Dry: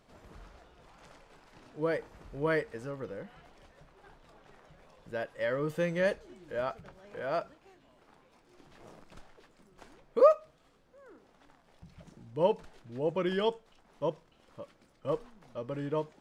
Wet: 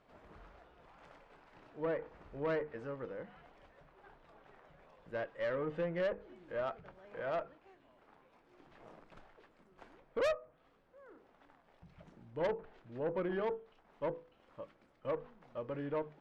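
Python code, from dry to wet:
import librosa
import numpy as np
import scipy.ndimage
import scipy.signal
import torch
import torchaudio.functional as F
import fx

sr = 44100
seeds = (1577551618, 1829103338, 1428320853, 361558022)

y = fx.env_lowpass_down(x, sr, base_hz=1400.0, full_db=-26.0)
y = fx.bass_treble(y, sr, bass_db=-4, treble_db=-15)
y = fx.hum_notches(y, sr, base_hz=50, count=10)
y = fx.tube_stage(y, sr, drive_db=28.0, bias=0.3)
y = y * 10.0 ** (-1.0 / 20.0)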